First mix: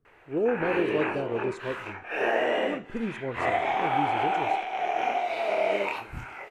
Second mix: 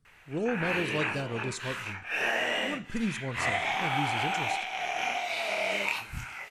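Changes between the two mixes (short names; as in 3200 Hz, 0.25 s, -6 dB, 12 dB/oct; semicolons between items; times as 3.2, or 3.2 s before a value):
speech +4.0 dB; master: add EQ curve 190 Hz 0 dB, 380 Hz -12 dB, 5800 Hz +11 dB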